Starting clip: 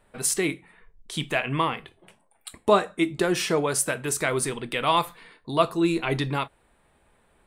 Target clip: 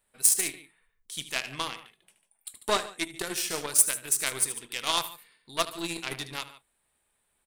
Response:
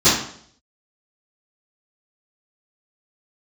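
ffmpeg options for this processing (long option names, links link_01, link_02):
-af "aecho=1:1:75.8|145.8:0.316|0.251,aeval=exprs='0.531*(cos(1*acos(clip(val(0)/0.531,-1,1)))-cos(1*PI/2))+0.0422*(cos(4*acos(clip(val(0)/0.531,-1,1)))-cos(4*PI/2))+0.0473*(cos(7*acos(clip(val(0)/0.531,-1,1)))-cos(7*PI/2))':channel_layout=same,crystalizer=i=7:c=0,volume=-11dB"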